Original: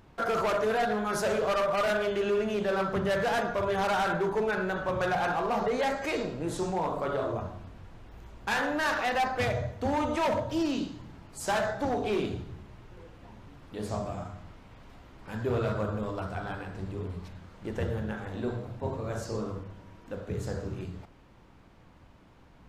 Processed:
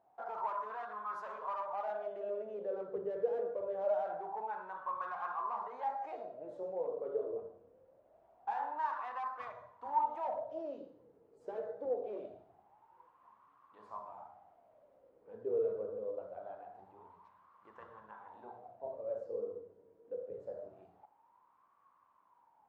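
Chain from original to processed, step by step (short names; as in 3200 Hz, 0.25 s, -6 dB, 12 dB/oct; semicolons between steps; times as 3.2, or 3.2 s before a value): wah 0.24 Hz 450–1100 Hz, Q 12; gain +3.5 dB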